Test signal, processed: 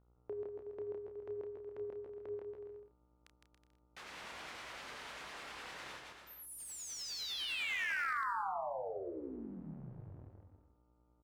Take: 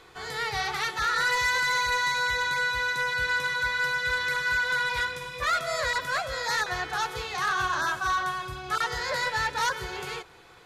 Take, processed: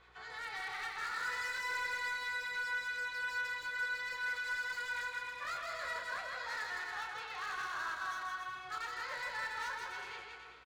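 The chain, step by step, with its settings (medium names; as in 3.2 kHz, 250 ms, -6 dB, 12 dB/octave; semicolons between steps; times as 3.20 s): octave divider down 2 oct, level -4 dB; low-pass 1.7 kHz 12 dB/octave; differentiator; in parallel at +1.5 dB: compression 5:1, threshold -56 dBFS; on the sum: wavefolder -36.5 dBFS; mains buzz 60 Hz, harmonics 24, -72 dBFS -6 dB/octave; harmonic tremolo 9.9 Hz, depth 50%, crossover 1.2 kHz; doubling 31 ms -7.5 dB; on a send: bouncing-ball echo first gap 160 ms, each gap 0.75×, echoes 5; on the sum: slew-rate limiter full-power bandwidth 31 Hz; trim +3 dB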